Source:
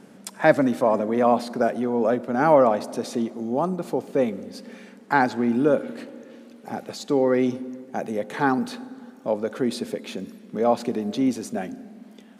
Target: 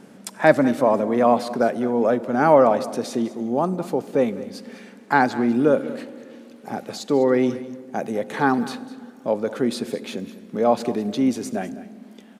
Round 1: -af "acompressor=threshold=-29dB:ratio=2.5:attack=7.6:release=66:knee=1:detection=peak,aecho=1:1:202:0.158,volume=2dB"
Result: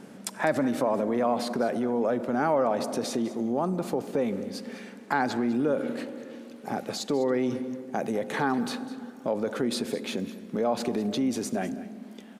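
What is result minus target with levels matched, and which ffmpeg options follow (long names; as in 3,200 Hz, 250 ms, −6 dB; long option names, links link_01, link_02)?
downward compressor: peak gain reduction +12.5 dB
-af "aecho=1:1:202:0.158,volume=2dB"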